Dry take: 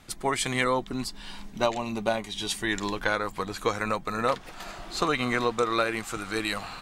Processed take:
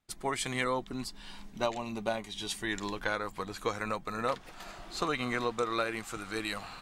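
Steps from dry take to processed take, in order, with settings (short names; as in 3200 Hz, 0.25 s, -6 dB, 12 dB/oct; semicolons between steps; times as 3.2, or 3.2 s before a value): gate with hold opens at -36 dBFS; gain -6 dB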